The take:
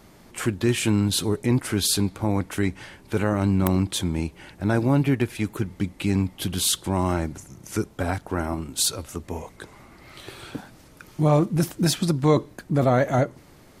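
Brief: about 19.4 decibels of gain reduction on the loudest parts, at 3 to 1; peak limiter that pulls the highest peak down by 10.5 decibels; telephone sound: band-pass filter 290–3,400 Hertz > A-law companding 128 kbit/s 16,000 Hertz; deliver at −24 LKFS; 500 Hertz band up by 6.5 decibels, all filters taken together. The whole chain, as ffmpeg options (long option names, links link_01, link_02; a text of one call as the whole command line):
ffmpeg -i in.wav -af "equalizer=frequency=500:width_type=o:gain=9,acompressor=threshold=-36dB:ratio=3,alimiter=level_in=5dB:limit=-24dB:level=0:latency=1,volume=-5dB,highpass=290,lowpass=3400,volume=20dB" -ar 16000 -c:a pcm_alaw out.wav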